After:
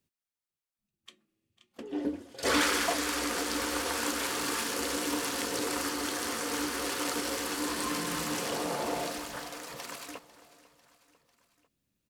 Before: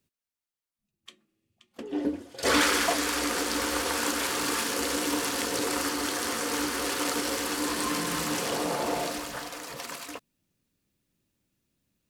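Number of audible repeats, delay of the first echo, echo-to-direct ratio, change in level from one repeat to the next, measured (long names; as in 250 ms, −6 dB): 3, 497 ms, −17.5 dB, −4.5 dB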